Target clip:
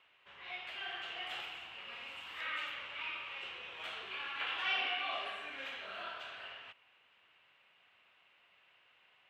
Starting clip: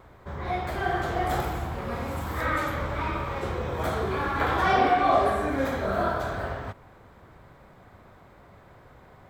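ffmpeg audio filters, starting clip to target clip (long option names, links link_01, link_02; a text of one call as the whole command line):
ffmpeg -i in.wav -af "bandpass=frequency=2800:width_type=q:width=11:csg=0,volume=10dB" out.wav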